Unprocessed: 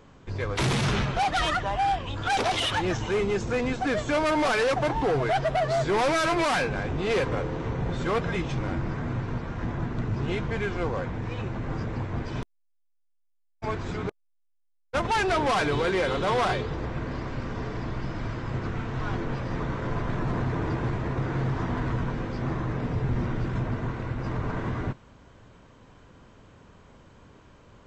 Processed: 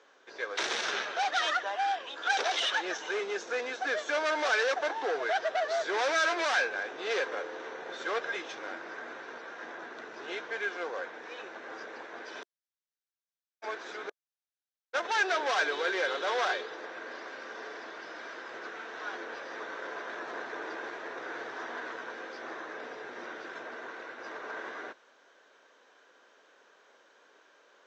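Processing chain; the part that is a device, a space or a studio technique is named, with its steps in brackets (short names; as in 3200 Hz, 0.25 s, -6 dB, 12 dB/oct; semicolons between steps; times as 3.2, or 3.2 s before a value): phone speaker on a table (speaker cabinet 410–7100 Hz, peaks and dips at 1000 Hz -3 dB, 1600 Hz +8 dB, 3700 Hz +5 dB, 5900 Hz +6 dB); gain -5 dB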